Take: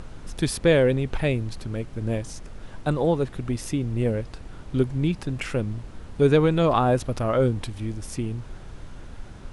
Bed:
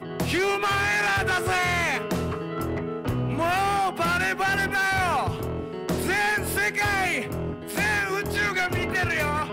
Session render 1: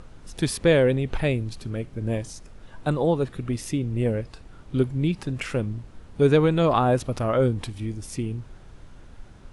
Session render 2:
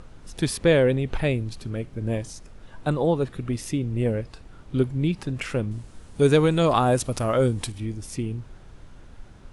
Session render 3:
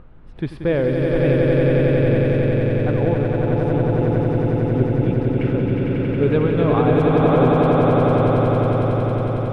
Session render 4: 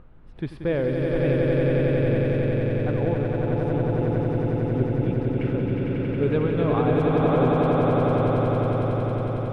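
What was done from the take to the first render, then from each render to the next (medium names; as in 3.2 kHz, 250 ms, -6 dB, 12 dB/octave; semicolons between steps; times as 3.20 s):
noise print and reduce 6 dB
5.71–7.72 s: peaking EQ 9.3 kHz +11.5 dB 1.7 oct
distance through air 490 m; echo with a slow build-up 91 ms, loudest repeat 8, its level -4 dB
trim -5 dB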